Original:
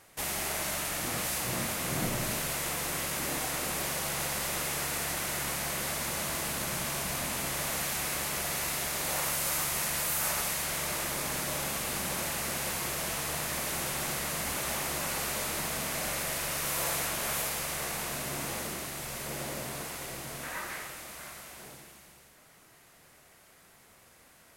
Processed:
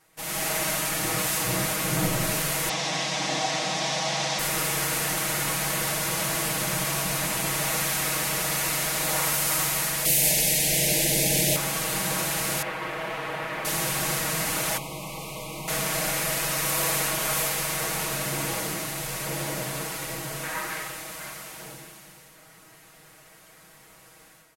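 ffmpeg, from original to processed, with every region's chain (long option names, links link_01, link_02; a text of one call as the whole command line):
ffmpeg -i in.wav -filter_complex "[0:a]asettb=1/sr,asplit=3[link_01][link_02][link_03];[link_01]atrim=end=2.694[link_04];[link_02]atrim=start=2.69:end=4.39,asetpts=PTS-STARTPTS,afade=type=in:duration=0.004:curve=qsin,afade=type=out:start_time=1.696:duration=0.004:curve=qsin,acrusher=bits=8:dc=4:mix=0:aa=0.000001,highpass=frequency=140:width=0.5412,highpass=frequency=140:width=1.3066,equalizer=frequency=400:width_type=q:width=4:gain=-10,equalizer=frequency=720:width_type=q:width=4:gain=8,equalizer=frequency=1400:width_type=q:width=4:gain=-6,equalizer=frequency=3600:width_type=q:width=4:gain=6,equalizer=frequency=5600:width_type=q:width=4:gain=5,lowpass=frequency=6600:width=0.5412,lowpass=frequency=6600:width=1.3066[link_05];[link_03]atrim=start=4.386[link_06];[link_04][link_05]acrossfade=duration=0.004:curve1=hsin:curve2=qsin[link_07];[link_07][link_06]acrossfade=duration=0.004:curve1=qsin:curve2=hsin,asettb=1/sr,asplit=3[link_08][link_09][link_10];[link_08]atrim=end=10.054[link_11];[link_09]atrim=start=10.05:end=11.56,asetpts=PTS-STARTPTS,afade=type=in:duration=0.004:curve=qsin,afade=type=out:start_time=1.506:duration=0.004:curve=qsin,asuperstop=centerf=1200:order=4:qfactor=0.81,acontrast=65[link_12];[link_10]atrim=start=11.556[link_13];[link_11][link_12]acrossfade=duration=0.004:curve1=hsin:curve2=qsin[link_14];[link_14][link_13]acrossfade=duration=0.004:curve1=qsin:curve2=hsin,asettb=1/sr,asplit=3[link_15][link_16][link_17];[link_15]atrim=end=12.624[link_18];[link_16]atrim=start=12.62:end=13.65,asetpts=PTS-STARTPTS,afade=type=in:duration=0.004:curve=qsin,afade=type=out:start_time=1.026:duration=0.004:curve=qsin,acrossover=split=3400[link_19][link_20];[link_20]acompressor=threshold=-51dB:ratio=4:attack=1:release=60[link_21];[link_19][link_21]amix=inputs=2:normalize=0,bass=frequency=250:gain=-9,treble=frequency=4000:gain=-9[link_22];[link_17]atrim=start=13.646[link_23];[link_18][link_22]acrossfade=duration=0.004:curve1=hsin:curve2=qsin[link_24];[link_24][link_23]acrossfade=duration=0.004:curve1=qsin:curve2=hsin,asettb=1/sr,asplit=3[link_25][link_26][link_27];[link_25]atrim=end=14.774[link_28];[link_26]atrim=start=14.77:end=15.68,asetpts=PTS-STARTPTS,afade=type=in:duration=0.004:curve=qsin,afade=type=out:start_time=0.906:duration=0.004:curve=qsin,acrossover=split=230|3600[link_29][link_30][link_31];[link_29]acompressor=threshold=-46dB:ratio=4[link_32];[link_30]acompressor=threshold=-42dB:ratio=4[link_33];[link_31]acompressor=threshold=-51dB:ratio=4[link_34];[link_32][link_33][link_34]amix=inputs=3:normalize=0,asuperstop=centerf=1600:order=12:qfactor=1.8[link_35];[link_27]atrim=start=15.676[link_36];[link_28][link_35]acrossfade=duration=0.004:curve1=hsin:curve2=qsin[link_37];[link_37][link_36]acrossfade=duration=0.004:curve1=qsin:curve2=hsin,aecho=1:1:6.3:0.97,dynaudnorm=framelen=120:gausssize=5:maxgain=11dB,volume=-7.5dB" out.wav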